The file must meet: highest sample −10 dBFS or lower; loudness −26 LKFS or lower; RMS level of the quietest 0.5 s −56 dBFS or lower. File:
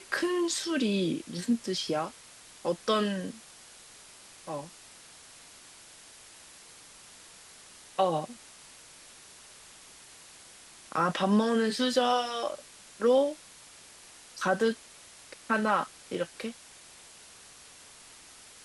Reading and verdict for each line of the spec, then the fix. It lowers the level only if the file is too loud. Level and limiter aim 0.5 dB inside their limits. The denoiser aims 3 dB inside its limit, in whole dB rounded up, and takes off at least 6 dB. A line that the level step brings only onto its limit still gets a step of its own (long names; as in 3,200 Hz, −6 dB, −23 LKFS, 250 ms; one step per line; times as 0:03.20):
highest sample −13.0 dBFS: in spec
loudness −29.5 LKFS: in spec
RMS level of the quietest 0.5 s −52 dBFS: out of spec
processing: broadband denoise 7 dB, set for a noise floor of −52 dBFS